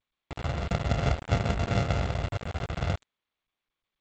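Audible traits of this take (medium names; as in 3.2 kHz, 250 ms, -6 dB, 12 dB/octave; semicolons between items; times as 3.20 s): a buzz of ramps at a fixed pitch in blocks of 64 samples; tremolo triangle 4.7 Hz, depth 40%; a quantiser's noise floor 6-bit, dither none; G.722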